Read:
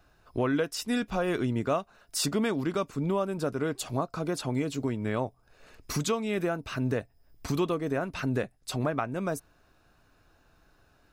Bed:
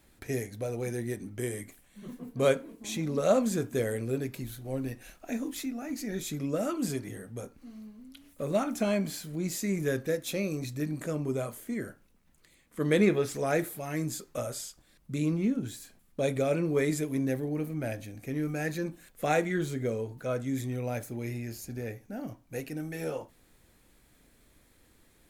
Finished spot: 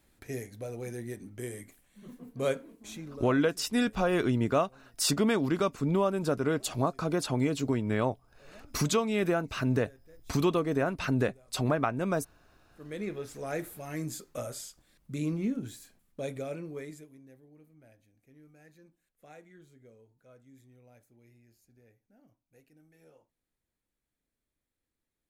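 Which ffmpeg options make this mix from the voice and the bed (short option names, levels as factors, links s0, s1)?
-filter_complex "[0:a]adelay=2850,volume=1.19[s0];[1:a]volume=9.44,afade=t=out:st=2.68:d=0.69:silence=0.0749894,afade=t=in:st=12.65:d=1.44:silence=0.0595662,afade=t=out:st=15.54:d=1.64:silence=0.0749894[s1];[s0][s1]amix=inputs=2:normalize=0"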